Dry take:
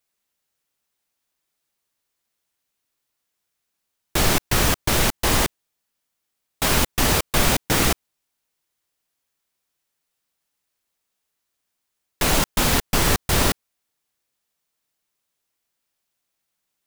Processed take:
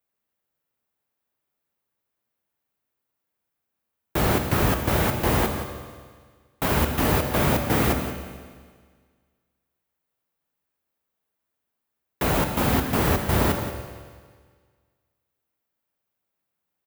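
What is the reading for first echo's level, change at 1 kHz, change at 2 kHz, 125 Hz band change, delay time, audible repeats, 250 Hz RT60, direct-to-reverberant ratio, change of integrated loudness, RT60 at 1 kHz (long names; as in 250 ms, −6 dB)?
−12.0 dB, −1.0 dB, −4.0 dB, +1.0 dB, 176 ms, 1, 1.7 s, 5.0 dB, −3.0 dB, 1.7 s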